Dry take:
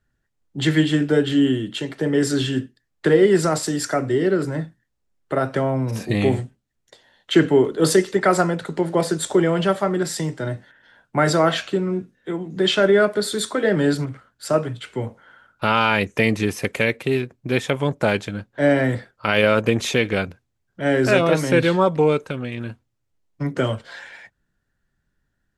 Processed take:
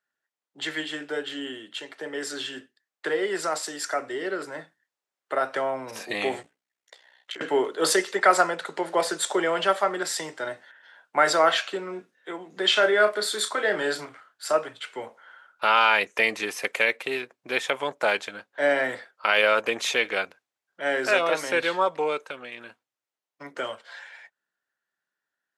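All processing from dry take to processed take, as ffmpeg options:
ffmpeg -i in.wav -filter_complex "[0:a]asettb=1/sr,asplit=3[link_01][link_02][link_03];[link_01]atrim=end=6.424[link_04];[link_02]atrim=start=6.42:end=7.41,asetpts=PTS-STARTPTS,afade=type=in:duration=0.004:curve=qsin,afade=type=out:start_time=0.986:duration=0.004:curve=qsin,equalizer=frequency=2100:width=4:gain=4.5,acompressor=threshold=-28dB:ratio=20:attack=3.2:release=140:knee=1:detection=peak,aeval=exprs='val(0)*sin(2*PI*31*n/s)':channel_layout=same[link_05];[link_03]atrim=start=7.406[link_06];[link_04][link_05]acrossfade=duration=0.004:curve1=hsin:curve2=qsin[link_07];[link_07][link_06]acrossfade=duration=0.004:curve1=qsin:curve2=hsin,asettb=1/sr,asplit=3[link_08][link_09][link_10];[link_08]atrim=end=12.724[link_11];[link_09]atrim=start=12.72:end=14.53,asetpts=PTS-STARTPTS,afade=type=in:duration=0.004:curve=qsin,afade=type=out:start_time=1.806:duration=0.004:curve=qsin,bandreject=frequency=530:width=17,asplit=2[link_12][link_13];[link_13]adelay=33,volume=-8.5dB[link_14];[link_12][link_14]amix=inputs=2:normalize=0,atrim=end_sample=79821[link_15];[link_10]atrim=start=14.526[link_16];[link_11][link_15]acrossfade=duration=0.004:curve1=hsin:curve2=qsin[link_17];[link_17][link_16]acrossfade=duration=0.004:curve1=qsin:curve2=hsin,highpass=670,highshelf=frequency=6200:gain=-4.5,dynaudnorm=framelen=770:gausssize=13:maxgain=11.5dB,volume=-4.5dB" out.wav

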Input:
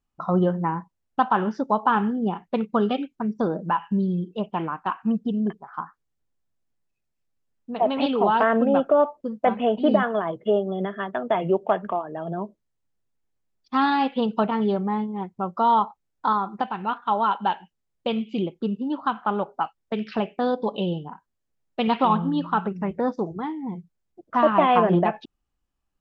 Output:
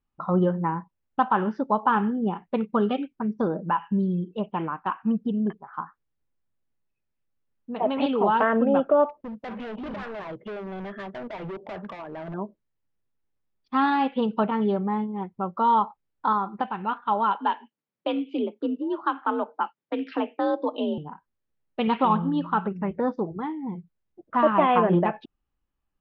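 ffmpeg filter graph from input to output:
ffmpeg -i in.wav -filter_complex "[0:a]asettb=1/sr,asplit=3[link_01][link_02][link_03];[link_01]atrim=end=9.094[link_04];[link_02]atrim=start=9.09:end=12.34,asetpts=PTS-STARTPTS,afade=type=in:duration=0.004:curve=qsin,afade=type=out:start_time=3.246:duration=0.004:curve=qsin,acompressor=threshold=-23dB:ratio=2.5:attack=3.2:release=140:knee=1:detection=peak,asoftclip=type=hard:threshold=-31.5dB[link_05];[link_03]atrim=start=12.336[link_06];[link_04][link_05]acrossfade=duration=0.004:curve1=hsin:curve2=qsin[link_07];[link_07][link_06]acrossfade=duration=0.004:curve1=qsin:curve2=hsin,asettb=1/sr,asplit=3[link_08][link_09][link_10];[link_08]atrim=end=17.394[link_11];[link_09]atrim=start=17.39:end=20.98,asetpts=PTS-STARTPTS,afade=type=in:duration=0.004:curve=qsin,afade=type=out:start_time=3.586:duration=0.004:curve=qsin,highpass=100,afreqshift=54[link_12];[link_10]atrim=start=20.976[link_13];[link_11][link_12]acrossfade=duration=0.004:curve1=hsin:curve2=qsin[link_14];[link_14][link_13]acrossfade=duration=0.004:curve1=qsin:curve2=hsin,lowpass=3100,bandreject=frequency=700:width=12,volume=-1dB" out.wav

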